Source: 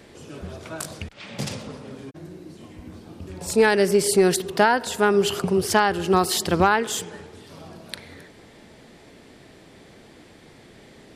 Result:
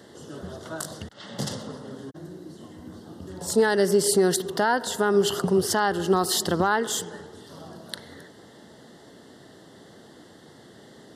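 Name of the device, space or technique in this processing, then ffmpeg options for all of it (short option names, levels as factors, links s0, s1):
PA system with an anti-feedback notch: -af "highpass=110,asuperstop=centerf=2400:order=4:qfactor=2.5,alimiter=limit=0.299:level=0:latency=1:release=111"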